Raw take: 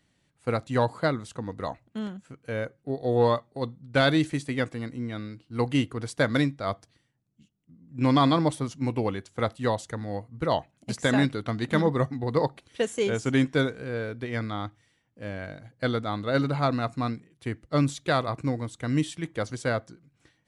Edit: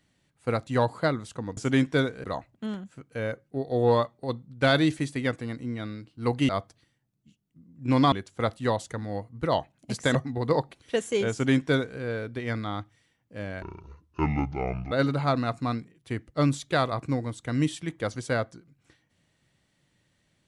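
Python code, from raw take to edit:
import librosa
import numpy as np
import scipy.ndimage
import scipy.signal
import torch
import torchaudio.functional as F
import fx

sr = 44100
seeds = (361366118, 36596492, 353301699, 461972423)

y = fx.edit(x, sr, fx.cut(start_s=5.82, length_s=0.8),
    fx.cut(start_s=8.25, length_s=0.86),
    fx.cut(start_s=11.14, length_s=0.87),
    fx.duplicate(start_s=13.18, length_s=0.67, to_s=1.57),
    fx.speed_span(start_s=15.48, length_s=0.79, speed=0.61), tone=tone)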